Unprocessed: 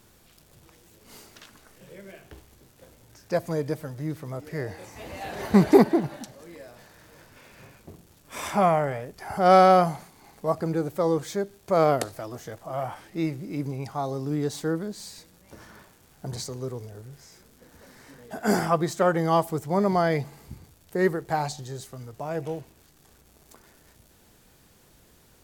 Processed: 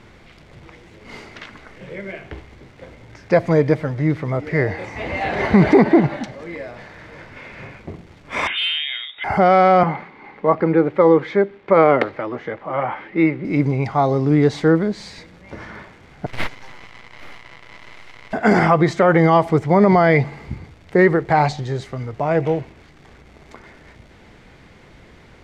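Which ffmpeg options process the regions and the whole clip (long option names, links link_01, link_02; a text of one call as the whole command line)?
ffmpeg -i in.wav -filter_complex "[0:a]asettb=1/sr,asplit=3[link_01][link_02][link_03];[link_01]atrim=end=8.474[link_04];[link_02]atrim=start=8.47:end=9.24,asetpts=PTS-STARTPTS,afade=type=in:duration=0.004:curve=qsin,afade=type=out:start_time=0.766:duration=0.004:curve=qsin,lowpass=frequency=3200:width_type=q:width=0.5098,lowpass=frequency=3200:width_type=q:width=0.6013,lowpass=frequency=3200:width_type=q:width=0.9,lowpass=frequency=3200:width_type=q:width=2.563,afreqshift=-3800,volume=16.5dB,asoftclip=hard,volume=-16.5dB,acompressor=threshold=-39dB:ratio=2:attack=3.2:release=140:knee=1:detection=peak[link_05];[link_03]atrim=start=9.236[link_06];[link_04][link_05]acrossfade=duration=0.004:curve1=hsin:curve2=qsin[link_07];[link_07][link_06]acrossfade=duration=0.004:curve1=qsin:curve2=hsin,asettb=1/sr,asplit=3[link_08][link_09][link_10];[link_08]atrim=end=9.834[link_11];[link_09]atrim=start=9.83:end=13.45,asetpts=PTS-STARTPTS,afade=type=in:duration=0.004:curve=qsin,afade=type=out:start_time=3.616:duration=0.004:curve=qsin,acrossover=split=180 3500:gain=0.178 1 0.0708[link_12][link_13][link_14];[link_12][link_13][link_14]amix=inputs=3:normalize=0,bandreject=frequency=680:width=5.7[link_15];[link_10]atrim=start=13.446[link_16];[link_11][link_15]acrossfade=duration=0.004:curve1=hsin:curve2=qsin[link_17];[link_17][link_16]acrossfade=duration=0.004:curve1=qsin:curve2=hsin,asettb=1/sr,asplit=3[link_18][link_19][link_20];[link_18]atrim=end=16.264[link_21];[link_19]atrim=start=16.26:end=18.33,asetpts=PTS-STARTPTS,afade=type=in:duration=0.004:curve=qsin,afade=type=out:start_time=2.066:duration=0.004:curve=qsin,aderivative,acontrast=80,aeval=exprs='abs(val(0))':channel_layout=same[link_22];[link_20]atrim=start=18.326[link_23];[link_21][link_22]acrossfade=duration=0.004:curve1=hsin:curve2=qsin[link_24];[link_24][link_23]acrossfade=duration=0.004:curve1=qsin:curve2=hsin,lowpass=3100,equalizer=frequency=2100:width=6.3:gain=9.5,alimiter=level_in=15dB:limit=-1dB:release=50:level=0:latency=1,volume=-2.5dB" out.wav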